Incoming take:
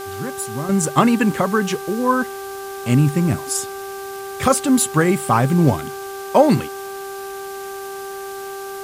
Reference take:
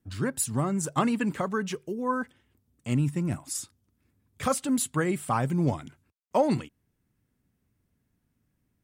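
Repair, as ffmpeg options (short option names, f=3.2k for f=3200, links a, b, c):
-af "bandreject=f=392:t=h:w=4,bandreject=f=784:t=h:w=4,bandreject=f=1.176k:t=h:w=4,bandreject=f=1.568k:t=h:w=4,afwtdn=0.011,asetnsamples=n=441:p=0,asendcmd='0.69 volume volume -10.5dB',volume=0dB"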